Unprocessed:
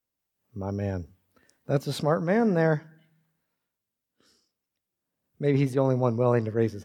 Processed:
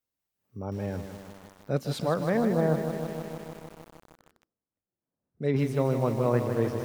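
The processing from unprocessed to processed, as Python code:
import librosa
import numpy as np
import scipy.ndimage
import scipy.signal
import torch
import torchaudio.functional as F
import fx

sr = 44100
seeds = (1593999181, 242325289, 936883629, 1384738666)

y = fx.lowpass(x, sr, hz=1100.0, slope=12, at=(2.37, 5.42))
y = fx.echo_crushed(y, sr, ms=155, feedback_pct=80, bits=7, wet_db=-8)
y = F.gain(torch.from_numpy(y), -3.0).numpy()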